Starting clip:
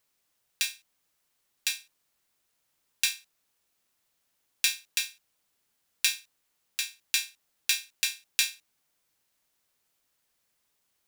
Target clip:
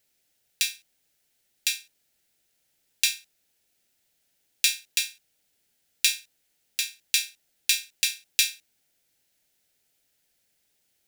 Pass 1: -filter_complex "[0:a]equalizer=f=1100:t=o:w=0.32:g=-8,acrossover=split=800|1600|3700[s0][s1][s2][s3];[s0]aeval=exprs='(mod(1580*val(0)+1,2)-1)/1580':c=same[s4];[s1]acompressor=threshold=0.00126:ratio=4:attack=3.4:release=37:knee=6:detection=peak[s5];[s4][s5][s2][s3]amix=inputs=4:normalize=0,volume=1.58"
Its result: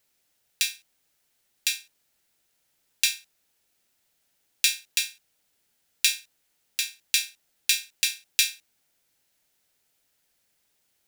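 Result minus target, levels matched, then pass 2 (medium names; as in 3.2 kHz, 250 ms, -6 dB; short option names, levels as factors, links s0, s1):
1 kHz band +2.5 dB
-filter_complex "[0:a]equalizer=f=1100:t=o:w=0.32:g=-20,acrossover=split=800|1600|3700[s0][s1][s2][s3];[s0]aeval=exprs='(mod(1580*val(0)+1,2)-1)/1580':c=same[s4];[s1]acompressor=threshold=0.00126:ratio=4:attack=3.4:release=37:knee=6:detection=peak[s5];[s4][s5][s2][s3]amix=inputs=4:normalize=0,volume=1.58"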